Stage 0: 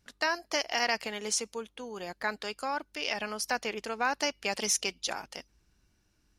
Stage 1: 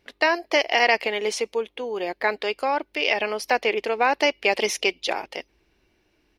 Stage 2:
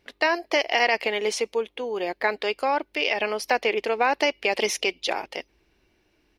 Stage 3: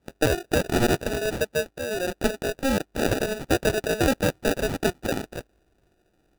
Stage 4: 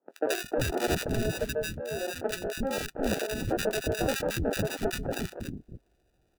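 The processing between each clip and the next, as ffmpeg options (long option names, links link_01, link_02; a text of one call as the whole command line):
ffmpeg -i in.wav -af "firequalizer=gain_entry='entry(180,0);entry(360,14);entry(930,9);entry(1400,3);entry(2100,13);entry(7000,-6);entry(15000,3)':delay=0.05:min_phase=1" out.wav
ffmpeg -i in.wav -af "alimiter=limit=-10dB:level=0:latency=1:release=95" out.wav
ffmpeg -i in.wav -af "acrusher=samples=41:mix=1:aa=0.000001" out.wav
ffmpeg -i in.wav -filter_complex "[0:a]acrossover=split=290|1300[link_01][link_02][link_03];[link_03]adelay=80[link_04];[link_01]adelay=360[link_05];[link_05][link_02][link_04]amix=inputs=3:normalize=0,volume=-4dB" out.wav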